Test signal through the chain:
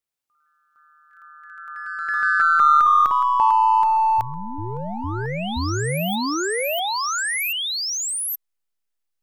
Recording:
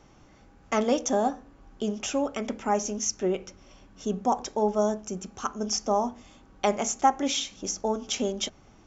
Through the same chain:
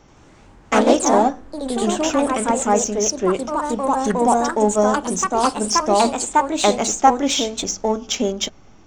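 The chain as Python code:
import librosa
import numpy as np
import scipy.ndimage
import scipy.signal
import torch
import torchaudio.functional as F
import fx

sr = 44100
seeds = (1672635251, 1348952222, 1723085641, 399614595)

p1 = fx.backlash(x, sr, play_db=-26.0)
p2 = x + (p1 * librosa.db_to_amplitude(-8.0))
p3 = fx.echo_pitch(p2, sr, ms=83, semitones=2, count=3, db_per_echo=-3.0)
y = p3 * librosa.db_to_amplitude(5.0)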